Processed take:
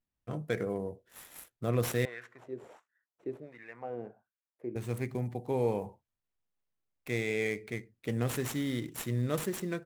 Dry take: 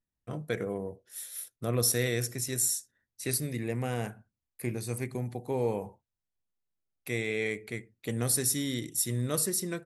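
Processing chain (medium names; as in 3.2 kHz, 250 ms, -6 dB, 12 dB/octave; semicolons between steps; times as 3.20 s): median filter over 9 samples; 2.05–4.76 s: LFO band-pass sine 1.4 Hz 360–1700 Hz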